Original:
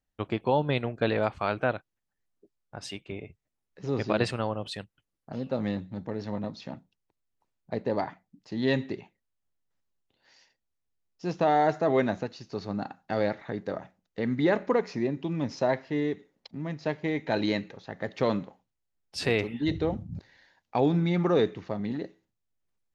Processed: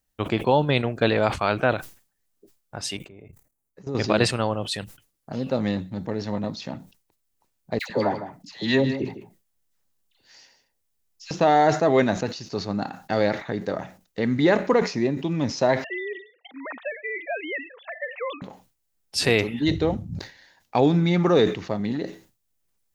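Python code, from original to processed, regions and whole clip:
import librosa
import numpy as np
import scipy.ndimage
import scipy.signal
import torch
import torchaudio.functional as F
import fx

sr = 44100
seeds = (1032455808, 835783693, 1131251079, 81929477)

y = fx.chain(x, sr, fx.peak_eq(hz=3300.0, db=-11.0, octaves=1.5),
    fx.level_steps(step_db=17),
    fx.notch(hz=5300.0, q=11.0), at=(2.97, 3.95))
y = fx.chain(y, sr, fx.dispersion(late='lows', ms=107.0, hz=1100.0),
    fx.echo_single(ms=155, db=-12.0), at=(7.79, 11.31))
y = fx.chain(y, sr, fx.sine_speech(),
    fx.highpass(hz=830.0, slope=12),
    fx.band_squash(depth_pct=70), at=(15.84, 18.42))
y = fx.high_shelf(y, sr, hz=5600.0, db=11.5)
y = fx.sustainer(y, sr, db_per_s=140.0)
y = y * 10.0 ** (5.0 / 20.0)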